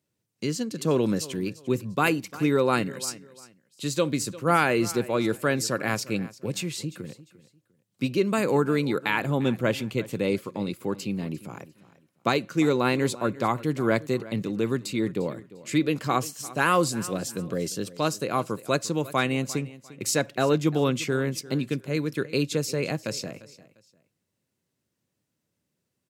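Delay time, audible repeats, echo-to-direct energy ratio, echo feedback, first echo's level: 0.349 s, 2, -18.0 dB, 27%, -18.5 dB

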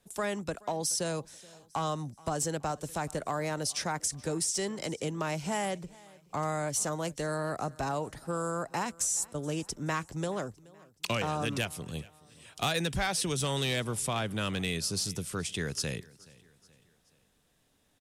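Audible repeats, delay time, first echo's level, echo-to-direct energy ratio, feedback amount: 2, 0.426 s, -23.0 dB, -22.0 dB, 46%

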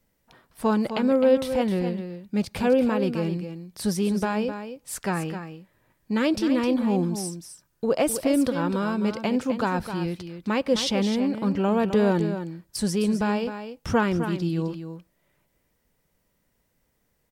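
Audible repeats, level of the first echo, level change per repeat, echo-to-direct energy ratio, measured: 1, -9.5 dB, no steady repeat, -9.5 dB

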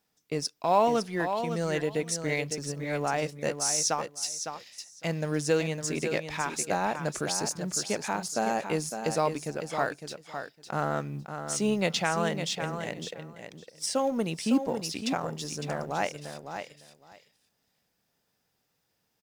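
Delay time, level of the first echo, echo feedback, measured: 0.557 s, -8.0 dB, 15%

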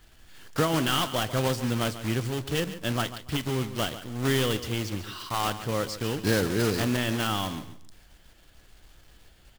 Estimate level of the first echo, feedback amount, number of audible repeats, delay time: -13.0 dB, 23%, 2, 0.142 s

